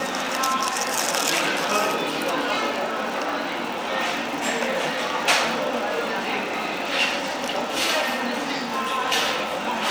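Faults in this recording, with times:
surface crackle 140 per second −28 dBFS

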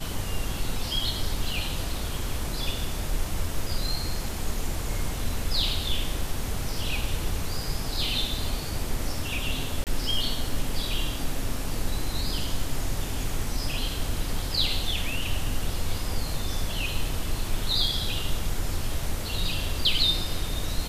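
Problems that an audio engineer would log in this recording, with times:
0:09.84–0:09.87: drop-out 28 ms

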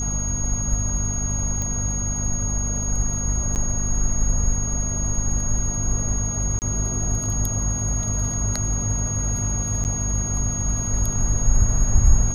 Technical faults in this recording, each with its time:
mains hum 50 Hz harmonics 5 −27 dBFS
whistle 6,600 Hz −26 dBFS
0:01.62: click −14 dBFS
0:03.55–0:03.56: drop-out 8.8 ms
0:06.59–0:06.62: drop-out 29 ms
0:09.84–0:09.85: drop-out 9.6 ms

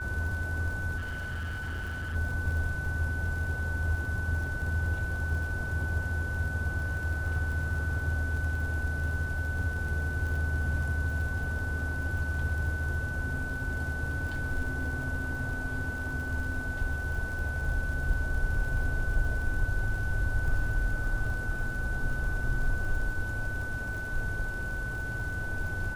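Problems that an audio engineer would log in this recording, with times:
surface crackle 48 per second −38 dBFS
whistle 1,500 Hz −35 dBFS
0:00.97–0:02.16: clipping −31.5 dBFS

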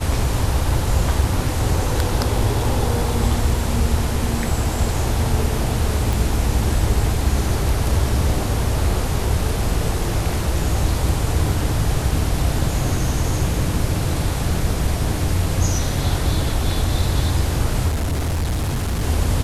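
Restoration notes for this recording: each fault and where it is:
0:06.13: click
0:17.88–0:19.03: clipping −18 dBFS

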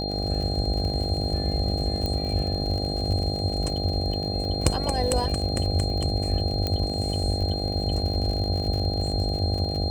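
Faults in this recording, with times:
mains buzz 50 Hz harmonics 16 −30 dBFS
surface crackle 61 per second −31 dBFS
whistle 4,200 Hz −31 dBFS
0:02.06: click −15 dBFS
0:06.67: click −13 dBFS

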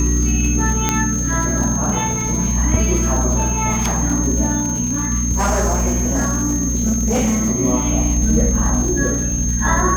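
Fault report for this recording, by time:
surface crackle 100 per second −23 dBFS
mains hum 60 Hz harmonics 4 −23 dBFS
whistle 6,400 Hz −22 dBFS
0:00.89: click −1 dBFS
0:02.21: drop-out 2.1 ms
0:05.31–0:07.49: clipping −13 dBFS

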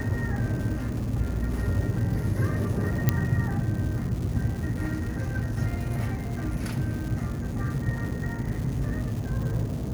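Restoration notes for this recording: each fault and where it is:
surface crackle 330 per second −35 dBFS
0:03.09: click −7 dBFS

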